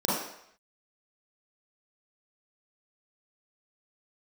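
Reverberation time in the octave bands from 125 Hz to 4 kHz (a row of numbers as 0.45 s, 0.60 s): 0.55 s, 0.55 s, 0.70 s, 0.75 s, 0.75 s, 0.70 s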